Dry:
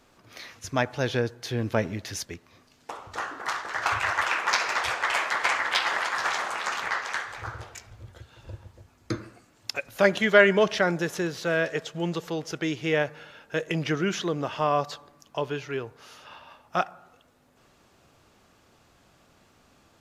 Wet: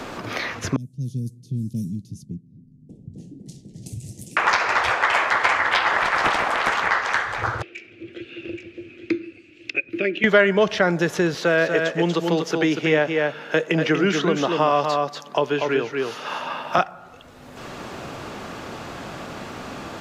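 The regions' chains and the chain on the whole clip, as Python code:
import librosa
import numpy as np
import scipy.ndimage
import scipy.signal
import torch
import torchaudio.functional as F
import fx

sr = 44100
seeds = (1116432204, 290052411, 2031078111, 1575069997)

y = fx.chain(x, sr, fx.env_lowpass(base_hz=890.0, full_db=-20.5),
    fx.cheby1_bandstop(low_hz=140.0, high_hz=9700.0, order=3),
    fx.low_shelf_res(hz=140.0, db=-11.5, q=1.5), at=(0.76, 4.37))
y = fx.chain(y, sr, fx.highpass(hz=220.0, slope=12),
    fx.doppler_dist(depth_ms=0.49), at=(6.02, 6.75))
y = fx.chain(y, sr, fx.double_bandpass(hz=920.0, octaves=2.9),
    fx.echo_single(ms=826, db=-12.0), at=(7.62, 10.24))
y = fx.chain(y, sr, fx.highpass(hz=170.0, slope=24),
    fx.echo_single(ms=239, db=-5.5), at=(11.34, 16.78))
y = fx.high_shelf(y, sr, hz=5400.0, db=-11.0)
y = fx.band_squash(y, sr, depth_pct=70)
y = y * 10.0 ** (8.0 / 20.0)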